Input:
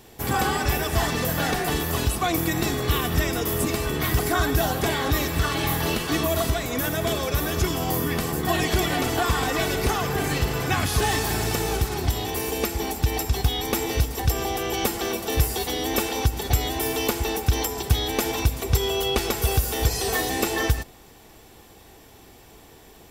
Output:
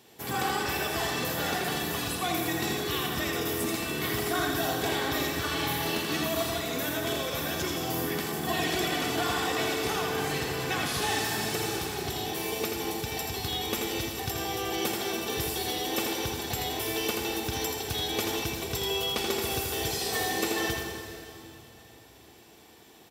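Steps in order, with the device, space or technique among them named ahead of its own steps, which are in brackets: PA in a hall (HPF 140 Hz 12 dB/oct; bell 3600 Hz +4 dB 1.4 oct; echo 82 ms -5 dB; reverb RT60 3.1 s, pre-delay 39 ms, DRR 4.5 dB); gain -8 dB

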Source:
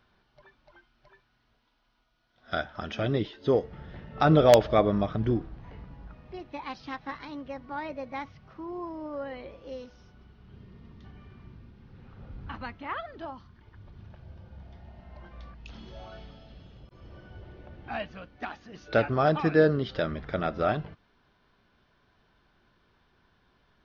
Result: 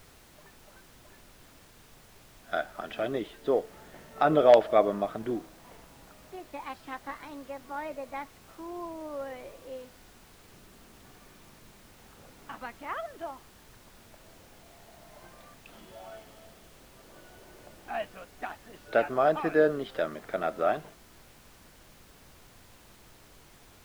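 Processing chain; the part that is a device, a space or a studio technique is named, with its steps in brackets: horn gramophone (BPF 300–3100 Hz; bell 670 Hz +5 dB 0.25 oct; wow and flutter 25 cents; pink noise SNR 22 dB); gain -1.5 dB

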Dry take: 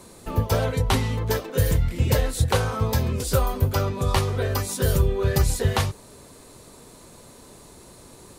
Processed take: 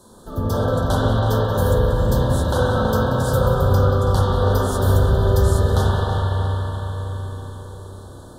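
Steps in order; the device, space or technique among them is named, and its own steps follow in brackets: elliptic band-stop 1600–3300 Hz, stop band 60 dB; split-band echo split 550 Hz, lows 0.66 s, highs 0.182 s, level -15 dB; dub delay into a spring reverb (darkening echo 0.326 s, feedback 60%, low-pass 4500 Hz, level -9.5 dB; spring tank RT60 3.9 s, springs 32/42/46 ms, chirp 55 ms, DRR -8.5 dB); gain -3.5 dB

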